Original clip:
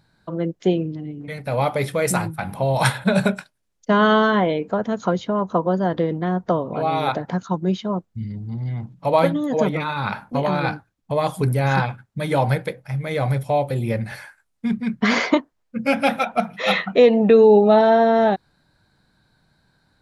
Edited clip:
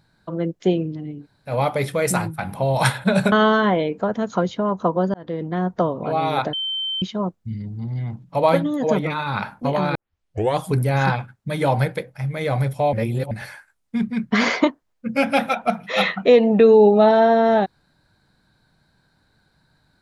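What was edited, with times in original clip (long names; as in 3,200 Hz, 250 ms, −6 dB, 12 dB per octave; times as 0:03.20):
0:01.22–0:01.49: fill with room tone, crossfade 0.10 s
0:03.32–0:04.02: remove
0:05.84–0:06.43: fade in equal-power
0:07.23–0:07.72: beep over 3,100 Hz −22.5 dBFS
0:10.65: tape start 0.63 s
0:13.63–0:14.01: reverse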